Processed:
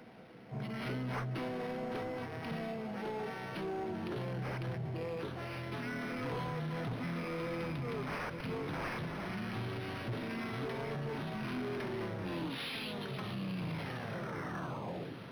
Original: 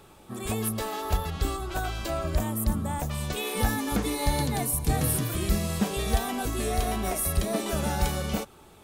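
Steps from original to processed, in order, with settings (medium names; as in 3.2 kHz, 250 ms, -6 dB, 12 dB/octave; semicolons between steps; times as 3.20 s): tape stop on the ending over 2.14 s; steep high-pass 200 Hz 36 dB/octave; saturation -28 dBFS, distortion -12 dB; on a send: echo that smears into a reverb 635 ms, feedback 54%, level -13.5 dB; on the sum: peak limiter -32 dBFS, peak gain reduction 7 dB; speed mistake 78 rpm record played at 45 rpm; decimation joined by straight lines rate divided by 6×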